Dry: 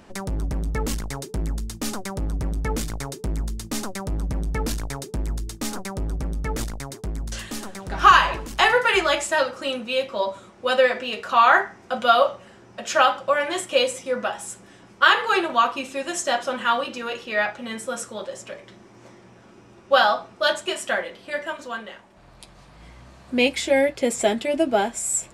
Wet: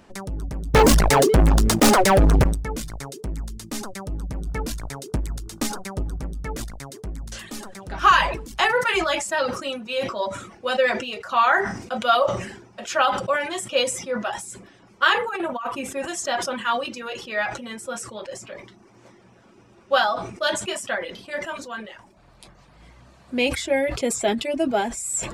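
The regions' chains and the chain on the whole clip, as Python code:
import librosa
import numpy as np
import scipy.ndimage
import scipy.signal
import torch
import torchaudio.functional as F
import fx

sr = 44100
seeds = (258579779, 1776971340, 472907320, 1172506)

y = fx.chain(x, sr, fx.peak_eq(hz=670.0, db=12.5, octaves=2.4),
    fx.leveller(passes=5), at=(0.74, 2.44))
y = fx.transient(y, sr, attack_db=8, sustain_db=2, at=(4.41, 6.25), fade=0.02)
y = fx.dmg_buzz(y, sr, base_hz=50.0, harmonics=30, level_db=-57.0, tilt_db=-1, odd_only=False, at=(4.41, 6.25), fade=0.02)
y = fx.chain(y, sr, fx.peak_eq(hz=4500.0, db=-11.5, octaves=1.2),
    fx.over_compress(threshold_db=-23.0, ratio=-0.5), at=(15.18, 16.08))
y = fx.dereverb_blind(y, sr, rt60_s=0.51)
y = fx.sustainer(y, sr, db_per_s=74.0)
y = y * 10.0 ** (-2.5 / 20.0)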